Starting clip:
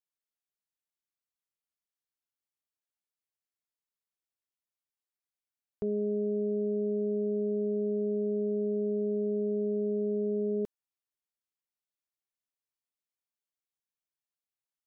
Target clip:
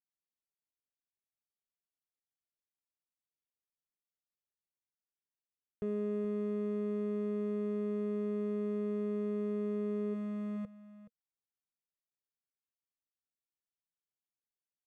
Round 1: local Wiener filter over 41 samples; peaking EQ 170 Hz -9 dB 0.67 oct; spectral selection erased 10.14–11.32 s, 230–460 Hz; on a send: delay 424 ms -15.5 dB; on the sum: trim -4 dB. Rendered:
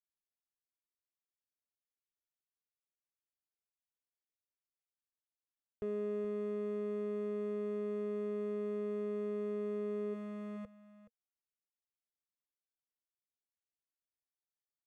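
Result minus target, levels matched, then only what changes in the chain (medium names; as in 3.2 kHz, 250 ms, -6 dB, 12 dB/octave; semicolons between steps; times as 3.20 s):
125 Hz band -3.5 dB
change: peaking EQ 170 Hz +2 dB 0.67 oct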